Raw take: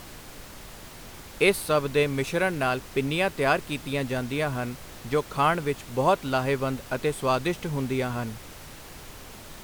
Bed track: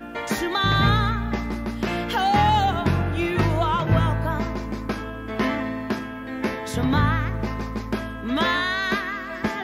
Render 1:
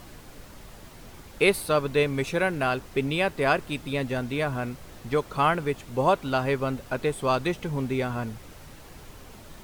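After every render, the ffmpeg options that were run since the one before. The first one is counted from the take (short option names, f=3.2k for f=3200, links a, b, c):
-af "afftdn=nr=6:nf=-44"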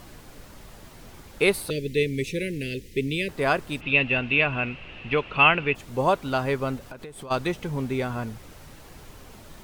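-filter_complex "[0:a]asettb=1/sr,asplit=3[a][b][c];[a]atrim=end=1.704[d];[b]atrim=start=1.7:end=3.29,asetpts=PTS-STARTPTS,afade=t=in:d=0.004:c=qsin,afade=t=out:st=1.586:d=0.004:c=qsin,asuperstop=centerf=980:order=12:qfactor=0.7[e];[c]atrim=start=3.286[f];[d][e]acrossfade=d=0.004:c1=hsin:c2=qsin[g];[g][f]acrossfade=d=0.004:c1=qsin:c2=hsin,asplit=3[h][i][j];[h]afade=t=out:st=3.8:d=0.02[k];[i]lowpass=f=2.7k:t=q:w=12,afade=t=in:st=3.8:d=0.02,afade=t=out:st=5.74:d=0.02[l];[j]afade=t=in:st=5.74:d=0.02[m];[k][l][m]amix=inputs=3:normalize=0,asplit=3[n][o][p];[n]afade=t=out:st=6.78:d=0.02[q];[o]acompressor=threshold=-35dB:ratio=20:attack=3.2:release=140:knee=1:detection=peak,afade=t=in:st=6.78:d=0.02,afade=t=out:st=7.3:d=0.02[r];[p]afade=t=in:st=7.3:d=0.02[s];[q][r][s]amix=inputs=3:normalize=0"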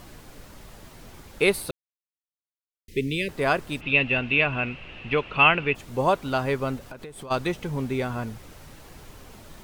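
-filter_complex "[0:a]asplit=3[a][b][c];[a]atrim=end=1.71,asetpts=PTS-STARTPTS,afade=t=out:st=1.706:d=0.004:c=hsin[d];[b]atrim=start=1.71:end=2.88,asetpts=PTS-STARTPTS,volume=0[e];[c]atrim=start=2.88,asetpts=PTS-STARTPTS,afade=t=in:d=0.004:c=hsin[f];[d][e][f]concat=n=3:v=0:a=1"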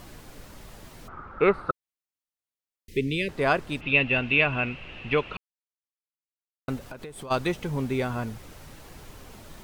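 -filter_complex "[0:a]asplit=3[a][b][c];[a]afade=t=out:st=1.07:d=0.02[d];[b]lowpass=f=1.3k:t=q:w=11,afade=t=in:st=1.07:d=0.02,afade=t=out:st=1.7:d=0.02[e];[c]afade=t=in:st=1.7:d=0.02[f];[d][e][f]amix=inputs=3:normalize=0,asettb=1/sr,asplit=3[g][h][i];[g]atrim=end=2.974[j];[h]atrim=start=2.97:end=4.14,asetpts=PTS-STARTPTS,afade=t=in:d=0.004:c=qsin,afade=t=out:st=1.166:d=0.004:c=qsin,highshelf=f=8.6k:g=-10[k];[i]atrim=start=4.136[l];[j][k]acrossfade=d=0.004:c1=hsin:c2=qsin[m];[m][l]acrossfade=d=0.004:c1=qsin:c2=hsin,asplit=3[n][o][p];[n]atrim=end=5.37,asetpts=PTS-STARTPTS,afade=t=out:st=5.366:d=0.004:c=hsin[q];[o]atrim=start=5.37:end=6.68,asetpts=PTS-STARTPTS,volume=0[r];[p]atrim=start=6.68,asetpts=PTS-STARTPTS,afade=t=in:d=0.004:c=hsin[s];[q][r][s]concat=n=3:v=0:a=1"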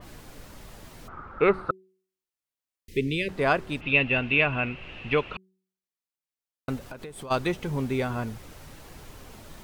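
-af "bandreject=f=188:t=h:w=4,bandreject=f=376:t=h:w=4,adynamicequalizer=threshold=0.0126:dfrequency=3600:dqfactor=0.7:tfrequency=3600:tqfactor=0.7:attack=5:release=100:ratio=0.375:range=3:mode=cutabove:tftype=highshelf"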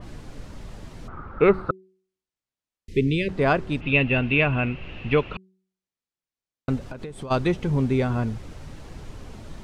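-af "lowpass=7.8k,lowshelf=f=400:g=8.5"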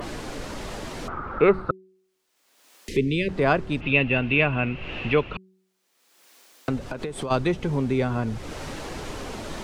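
-filter_complex "[0:a]acrossover=split=260[a][b];[a]alimiter=limit=-24dB:level=0:latency=1:release=20[c];[b]acompressor=mode=upward:threshold=-24dB:ratio=2.5[d];[c][d]amix=inputs=2:normalize=0"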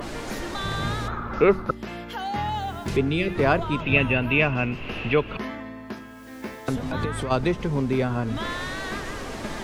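-filter_complex "[1:a]volume=-9.5dB[a];[0:a][a]amix=inputs=2:normalize=0"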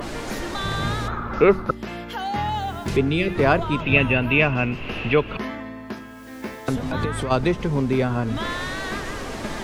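-af "volume=2.5dB"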